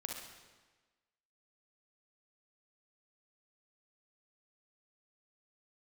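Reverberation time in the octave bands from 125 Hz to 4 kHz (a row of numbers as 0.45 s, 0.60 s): 1.2 s, 1.3 s, 1.3 s, 1.3 s, 1.3 s, 1.2 s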